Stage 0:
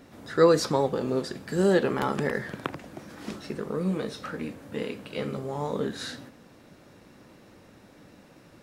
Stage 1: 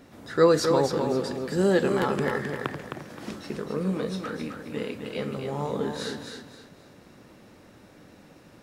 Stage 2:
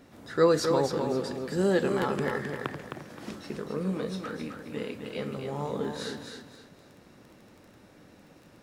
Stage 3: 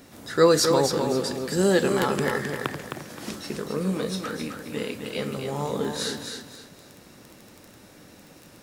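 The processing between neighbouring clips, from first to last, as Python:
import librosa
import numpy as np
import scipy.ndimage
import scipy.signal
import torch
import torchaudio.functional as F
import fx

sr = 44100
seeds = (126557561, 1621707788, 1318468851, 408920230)

y1 = fx.echo_feedback(x, sr, ms=262, feedback_pct=30, wet_db=-6.0)
y2 = fx.dmg_crackle(y1, sr, seeds[0], per_s=11.0, level_db=-40.0)
y2 = y2 * 10.0 ** (-3.0 / 20.0)
y3 = fx.high_shelf(y2, sr, hz=4300.0, db=11.5)
y3 = y3 * 10.0 ** (4.0 / 20.0)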